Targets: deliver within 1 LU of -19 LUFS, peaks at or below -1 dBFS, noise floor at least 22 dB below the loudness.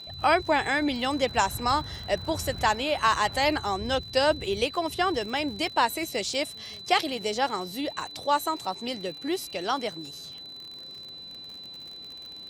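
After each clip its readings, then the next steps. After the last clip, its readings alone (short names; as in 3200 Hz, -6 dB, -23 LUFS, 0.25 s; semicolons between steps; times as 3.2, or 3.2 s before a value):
ticks 56/s; steady tone 4000 Hz; tone level -40 dBFS; loudness -27.0 LUFS; peak -7.0 dBFS; loudness target -19.0 LUFS
-> de-click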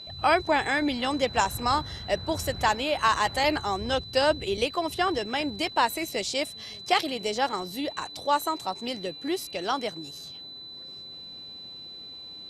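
ticks 0.080/s; steady tone 4000 Hz; tone level -40 dBFS
-> notch 4000 Hz, Q 30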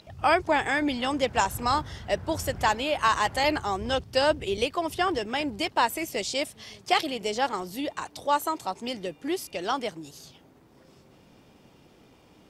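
steady tone none; loudness -27.0 LUFS; peak -7.5 dBFS; loudness target -19.0 LUFS
-> gain +8 dB; limiter -1 dBFS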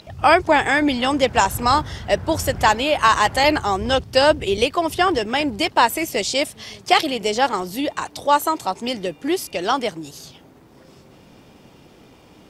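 loudness -19.0 LUFS; peak -1.0 dBFS; noise floor -49 dBFS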